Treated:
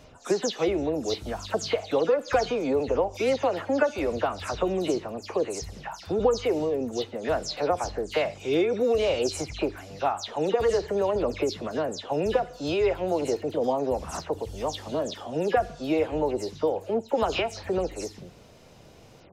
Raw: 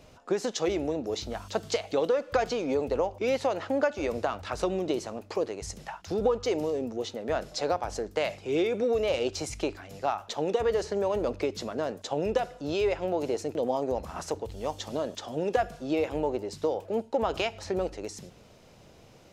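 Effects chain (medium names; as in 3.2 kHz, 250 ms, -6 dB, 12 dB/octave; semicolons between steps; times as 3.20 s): delay that grows with frequency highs early, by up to 130 ms; trim +3 dB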